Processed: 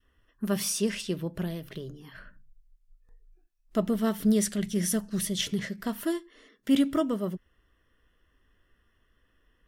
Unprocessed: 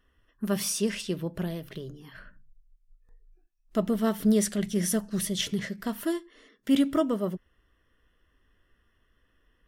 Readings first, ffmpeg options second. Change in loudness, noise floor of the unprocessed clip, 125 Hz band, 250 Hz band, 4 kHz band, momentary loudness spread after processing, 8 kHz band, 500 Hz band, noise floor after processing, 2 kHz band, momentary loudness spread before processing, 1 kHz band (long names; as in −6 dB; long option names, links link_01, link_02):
−0.5 dB, −70 dBFS, −0.5 dB, −0.5 dB, 0.0 dB, 14 LU, 0.0 dB, −1.5 dB, −70 dBFS, −0.5 dB, 15 LU, −1.5 dB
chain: -af "adynamicequalizer=threshold=0.0112:dfrequency=690:dqfactor=0.72:tfrequency=690:tqfactor=0.72:attack=5:release=100:ratio=0.375:range=2.5:mode=cutabove:tftype=bell"